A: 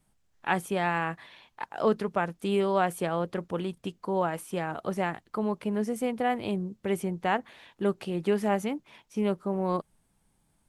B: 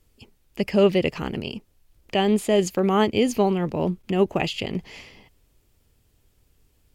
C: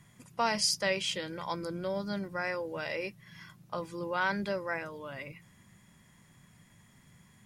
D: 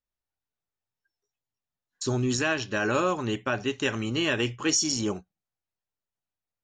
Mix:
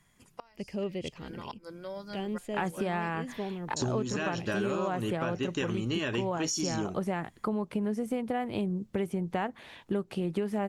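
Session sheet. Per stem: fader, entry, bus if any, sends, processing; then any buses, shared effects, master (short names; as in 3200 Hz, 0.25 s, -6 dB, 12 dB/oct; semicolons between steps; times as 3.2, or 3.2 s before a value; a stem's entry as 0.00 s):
+2.5 dB, 2.10 s, no send, de-esser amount 95%
-17.5 dB, 0.00 s, no send, dry
-4.5 dB, 0.00 s, no send, HPF 510 Hz 6 dB/oct; flipped gate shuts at -23 dBFS, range -28 dB
0.0 dB, 1.75 s, no send, dry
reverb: off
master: low shelf 350 Hz +5.5 dB; compressor 6:1, threshold -28 dBFS, peak gain reduction 14.5 dB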